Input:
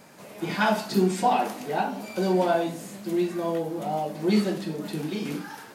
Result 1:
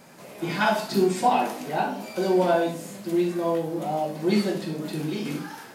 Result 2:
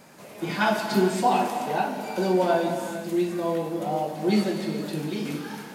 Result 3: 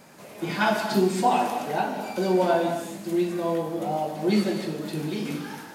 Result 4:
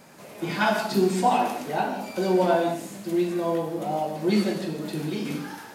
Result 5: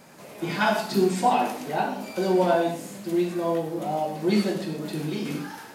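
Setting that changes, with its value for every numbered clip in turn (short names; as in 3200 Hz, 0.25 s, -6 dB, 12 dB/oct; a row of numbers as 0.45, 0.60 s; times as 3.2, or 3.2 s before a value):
non-linear reverb, gate: 90, 480, 320, 200, 140 ms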